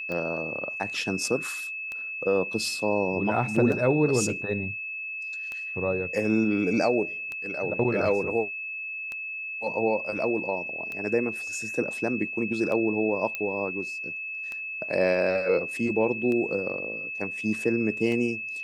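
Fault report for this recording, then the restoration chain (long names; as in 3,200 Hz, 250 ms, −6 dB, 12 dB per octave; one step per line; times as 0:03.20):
scratch tick 33 1/3 rpm −21 dBFS
whistle 2,600 Hz −32 dBFS
0:03.56: drop-out 3.6 ms
0:13.35: click −16 dBFS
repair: click removal
notch filter 2,600 Hz, Q 30
repair the gap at 0:03.56, 3.6 ms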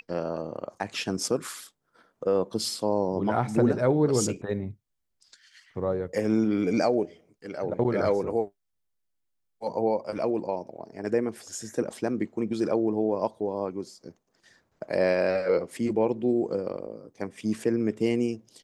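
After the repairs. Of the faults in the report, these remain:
none of them is left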